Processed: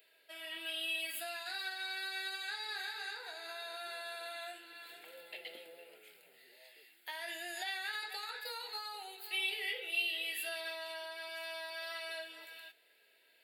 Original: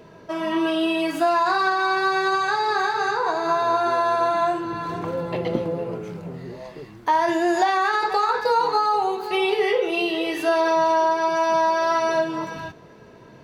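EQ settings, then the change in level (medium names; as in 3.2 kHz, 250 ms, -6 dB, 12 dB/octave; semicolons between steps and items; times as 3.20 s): high-pass 540 Hz 12 dB/octave; differentiator; static phaser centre 2.6 kHz, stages 4; +1.5 dB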